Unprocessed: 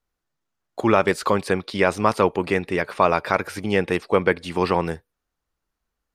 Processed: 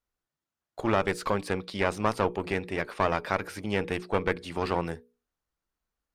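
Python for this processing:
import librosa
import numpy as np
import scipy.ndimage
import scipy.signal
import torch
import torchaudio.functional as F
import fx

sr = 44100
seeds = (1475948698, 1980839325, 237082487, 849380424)

y = fx.diode_clip(x, sr, knee_db=-20.5)
y = fx.hum_notches(y, sr, base_hz=60, count=8)
y = y * 10.0 ** (-6.0 / 20.0)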